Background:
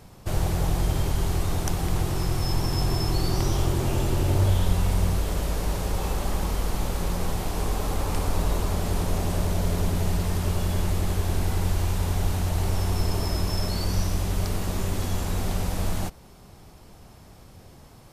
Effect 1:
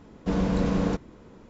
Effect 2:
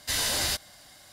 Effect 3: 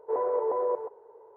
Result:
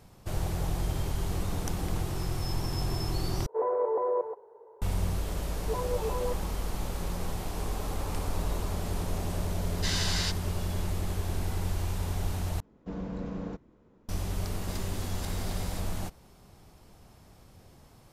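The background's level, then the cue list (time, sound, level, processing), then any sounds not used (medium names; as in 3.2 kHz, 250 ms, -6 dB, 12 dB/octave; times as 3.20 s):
background -6.5 dB
1.03 s: add 1 -18 dB + jump at every zero crossing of -37.5 dBFS
3.46 s: replace with 3 -0.5 dB
5.58 s: add 3 -1.5 dB + expander on every frequency bin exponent 3
9.75 s: add 2 -2.5 dB + Chebyshev band-pass 1–6 kHz
12.60 s: replace with 1 -11.5 dB + treble shelf 2 kHz -8 dB
14.68 s: add 2 -5.5 dB + compressor with a negative ratio -37 dBFS, ratio -0.5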